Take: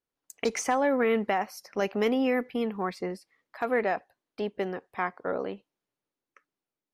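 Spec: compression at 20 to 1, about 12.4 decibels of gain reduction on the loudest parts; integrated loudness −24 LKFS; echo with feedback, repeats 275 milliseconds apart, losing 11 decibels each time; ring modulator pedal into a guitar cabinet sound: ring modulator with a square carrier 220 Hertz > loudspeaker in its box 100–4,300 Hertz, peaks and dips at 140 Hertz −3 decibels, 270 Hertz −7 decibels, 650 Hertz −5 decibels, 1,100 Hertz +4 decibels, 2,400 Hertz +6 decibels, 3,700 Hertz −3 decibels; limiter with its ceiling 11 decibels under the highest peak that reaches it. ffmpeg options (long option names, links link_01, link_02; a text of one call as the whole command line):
ffmpeg -i in.wav -af "acompressor=threshold=-33dB:ratio=20,alimiter=level_in=6dB:limit=-24dB:level=0:latency=1,volume=-6dB,aecho=1:1:275|550|825:0.282|0.0789|0.0221,aeval=exprs='val(0)*sgn(sin(2*PI*220*n/s))':channel_layout=same,highpass=100,equalizer=frequency=140:width_type=q:width=4:gain=-3,equalizer=frequency=270:width_type=q:width=4:gain=-7,equalizer=frequency=650:width_type=q:width=4:gain=-5,equalizer=frequency=1100:width_type=q:width=4:gain=4,equalizer=frequency=2400:width_type=q:width=4:gain=6,equalizer=frequency=3700:width_type=q:width=4:gain=-3,lowpass=frequency=4300:width=0.5412,lowpass=frequency=4300:width=1.3066,volume=18dB" out.wav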